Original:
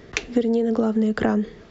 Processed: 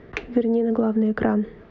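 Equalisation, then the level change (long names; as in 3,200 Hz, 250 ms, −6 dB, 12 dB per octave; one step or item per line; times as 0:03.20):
low-pass filter 2,100 Hz 12 dB per octave
0.0 dB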